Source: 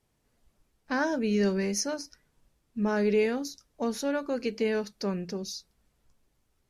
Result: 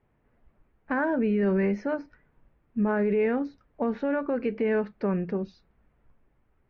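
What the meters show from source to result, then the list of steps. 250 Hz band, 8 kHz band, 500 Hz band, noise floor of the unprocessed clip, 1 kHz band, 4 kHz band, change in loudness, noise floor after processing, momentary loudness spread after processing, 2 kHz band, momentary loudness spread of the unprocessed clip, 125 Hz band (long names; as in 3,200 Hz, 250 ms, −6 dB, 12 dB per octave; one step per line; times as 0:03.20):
+3.0 dB, below −30 dB, +2.0 dB, −74 dBFS, +2.0 dB, below −15 dB, +2.0 dB, −69 dBFS, 9 LU, +1.0 dB, 13 LU, +3.5 dB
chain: low-pass filter 2,200 Hz 24 dB per octave
brickwall limiter −23.5 dBFS, peak gain reduction 7 dB
level +5.5 dB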